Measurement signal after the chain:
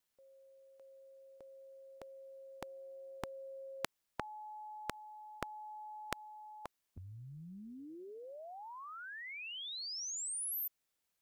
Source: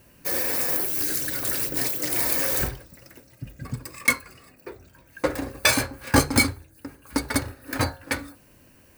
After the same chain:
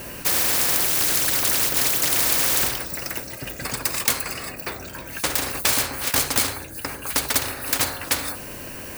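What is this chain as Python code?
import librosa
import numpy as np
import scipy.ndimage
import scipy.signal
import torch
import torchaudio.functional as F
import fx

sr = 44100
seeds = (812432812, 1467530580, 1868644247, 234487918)

y = fx.spectral_comp(x, sr, ratio=4.0)
y = F.gain(torch.from_numpy(y), 1.5).numpy()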